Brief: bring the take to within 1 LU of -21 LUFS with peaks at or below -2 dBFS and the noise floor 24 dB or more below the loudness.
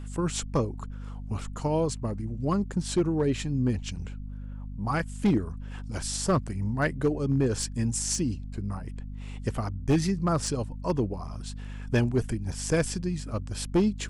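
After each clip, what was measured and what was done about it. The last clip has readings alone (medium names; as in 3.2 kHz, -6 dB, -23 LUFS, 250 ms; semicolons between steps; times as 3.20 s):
clipped samples 0.5%; clipping level -17.0 dBFS; hum 50 Hz; highest harmonic 250 Hz; hum level -35 dBFS; loudness -29.0 LUFS; peak level -17.0 dBFS; loudness target -21.0 LUFS
-> clip repair -17 dBFS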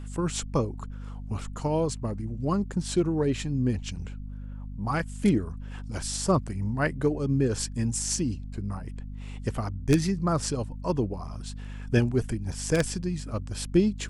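clipped samples 0.0%; hum 50 Hz; highest harmonic 250 Hz; hum level -35 dBFS
-> hum notches 50/100/150/200/250 Hz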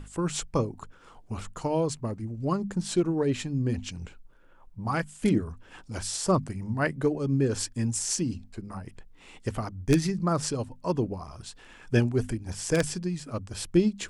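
hum not found; loudness -29.0 LUFS; peak level -8.5 dBFS; loudness target -21.0 LUFS
-> trim +8 dB; peak limiter -2 dBFS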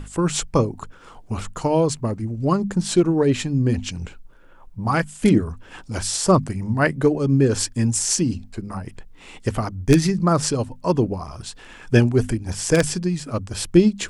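loudness -21.0 LUFS; peak level -2.0 dBFS; noise floor -45 dBFS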